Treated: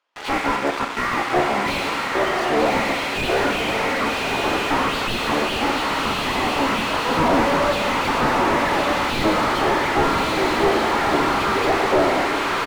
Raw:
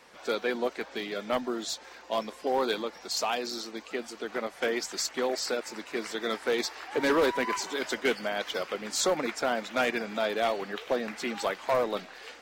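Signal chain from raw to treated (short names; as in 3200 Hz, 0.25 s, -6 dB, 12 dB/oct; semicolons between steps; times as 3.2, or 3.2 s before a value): one diode to ground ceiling -32 dBFS; speed mistake 78 rpm record played at 45 rpm; weighting filter A; tempo 1.7×; in parallel at -1 dB: level quantiser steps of 11 dB; on the sum: gate with hold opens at -42 dBFS; low shelf 430 Hz -12 dB; diffused feedback echo 1.152 s, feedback 46%, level -4 dB; Schroeder reverb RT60 1.2 s, combs from 32 ms, DRR 6.5 dB; sample leveller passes 3; slew limiter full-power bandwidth 60 Hz; gain +8 dB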